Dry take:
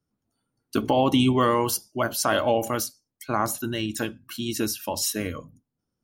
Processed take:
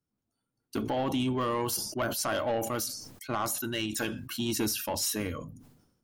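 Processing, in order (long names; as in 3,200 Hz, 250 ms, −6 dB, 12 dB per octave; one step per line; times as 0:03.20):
0:03.35–0:04.25: low-shelf EQ 430 Hz −7 dB
speech leveller within 4 dB 0.5 s
soft clipping −19 dBFS, distortion −14 dB
level that may fall only so fast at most 62 dB per second
level −3.5 dB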